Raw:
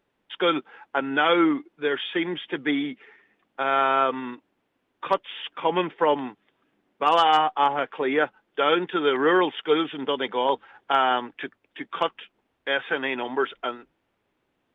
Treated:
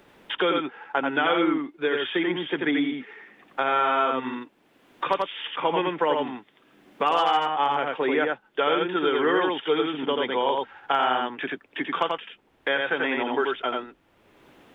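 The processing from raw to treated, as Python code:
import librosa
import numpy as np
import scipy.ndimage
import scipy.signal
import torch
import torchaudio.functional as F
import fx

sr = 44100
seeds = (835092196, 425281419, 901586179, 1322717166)

y = x + 10.0 ** (-3.0 / 20.0) * np.pad(x, (int(86 * sr / 1000.0), 0))[:len(x)]
y = fx.band_squash(y, sr, depth_pct=70)
y = F.gain(torch.from_numpy(y), -2.5).numpy()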